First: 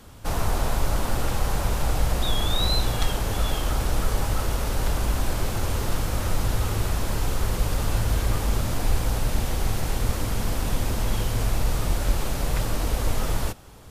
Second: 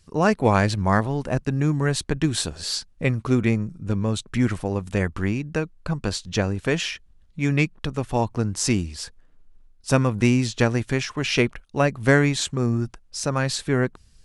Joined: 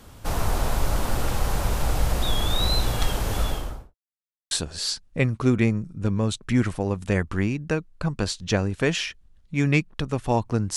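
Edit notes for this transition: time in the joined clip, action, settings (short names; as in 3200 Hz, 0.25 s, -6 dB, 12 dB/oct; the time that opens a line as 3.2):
first
3.37–3.95 studio fade out
3.95–4.51 mute
4.51 switch to second from 2.36 s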